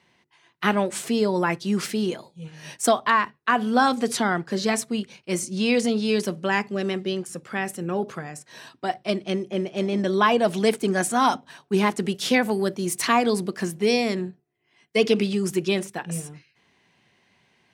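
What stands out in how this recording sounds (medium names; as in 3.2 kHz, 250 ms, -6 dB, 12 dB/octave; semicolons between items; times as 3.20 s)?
noise floor -66 dBFS; spectral tilt -4.5 dB/octave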